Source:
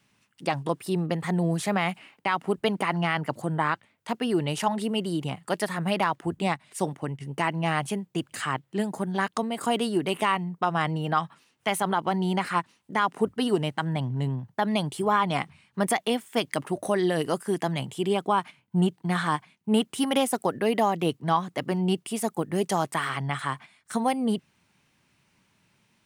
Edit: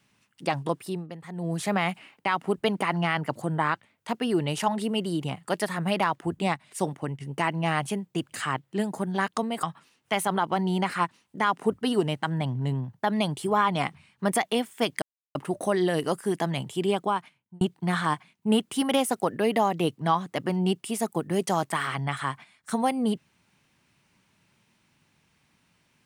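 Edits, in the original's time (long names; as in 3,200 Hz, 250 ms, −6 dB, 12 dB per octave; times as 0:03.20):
0:00.61–0:01.79: duck −12.5 dB, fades 0.45 s equal-power
0:09.63–0:11.18: remove
0:16.57: splice in silence 0.33 s
0:18.17–0:18.83: fade out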